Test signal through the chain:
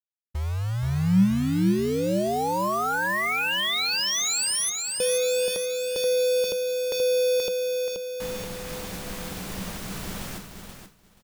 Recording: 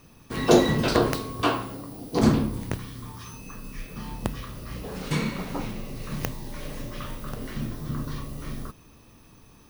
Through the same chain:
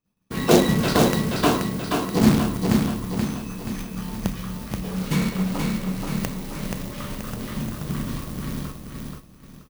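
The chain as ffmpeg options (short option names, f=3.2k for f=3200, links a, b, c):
-filter_complex "[0:a]acrusher=bits=2:mode=log:mix=0:aa=0.000001,equalizer=f=190:w=5.3:g=12,asplit=2[a][b];[b]aecho=0:1:479|958|1437|1916|2395|2874:0.631|0.315|0.158|0.0789|0.0394|0.0197[c];[a][c]amix=inputs=2:normalize=0,agate=range=-33dB:threshold=-33dB:ratio=3:detection=peak"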